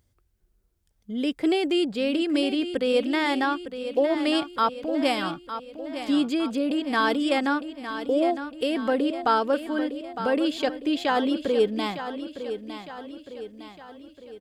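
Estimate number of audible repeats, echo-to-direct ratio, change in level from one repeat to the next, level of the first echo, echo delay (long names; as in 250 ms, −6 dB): 5, −9.0 dB, −6.0 dB, −10.5 dB, 908 ms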